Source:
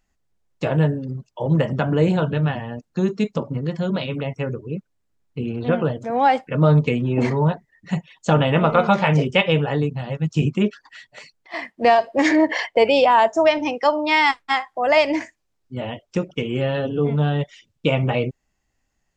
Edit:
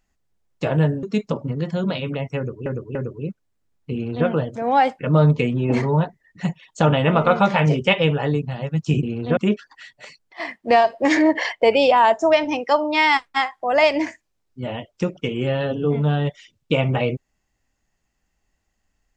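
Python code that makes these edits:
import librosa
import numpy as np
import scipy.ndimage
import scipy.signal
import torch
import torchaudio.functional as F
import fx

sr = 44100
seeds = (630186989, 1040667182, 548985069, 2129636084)

y = fx.edit(x, sr, fx.cut(start_s=1.03, length_s=2.06),
    fx.repeat(start_s=4.43, length_s=0.29, count=3),
    fx.duplicate(start_s=5.41, length_s=0.34, to_s=10.51), tone=tone)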